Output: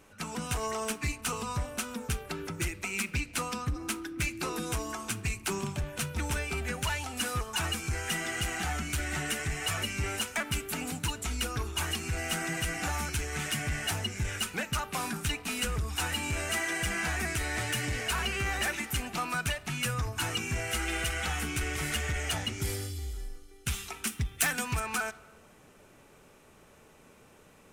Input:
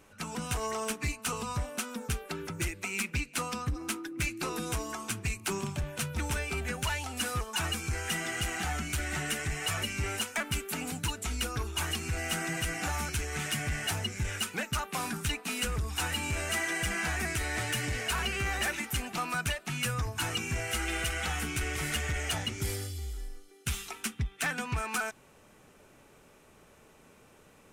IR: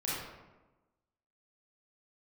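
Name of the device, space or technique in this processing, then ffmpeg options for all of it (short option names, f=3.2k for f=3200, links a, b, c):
saturated reverb return: -filter_complex "[0:a]asplit=2[a][b];[1:a]atrim=start_sample=2205[c];[b][c]afir=irnorm=-1:irlink=0,asoftclip=type=tanh:threshold=-30dB,volume=-18dB[d];[a][d]amix=inputs=2:normalize=0,asettb=1/sr,asplit=3[e][f][g];[e]atrim=end=24.074[h];[f]atrim=start=24.07:end=24.8,asetpts=PTS-STARTPTS,afade=t=in:d=0.004:c=qsin,afade=t=out:st=0.726:d=0.004:c=qsin,aemphasis=mode=production:type=50kf[i];[g]atrim=start=24.796[j];[h][i]acrossfade=d=0.004:c1=hsin:c2=qsin[k];[k][j]acrossfade=d=0.004:c1=qsin:c2=hsin"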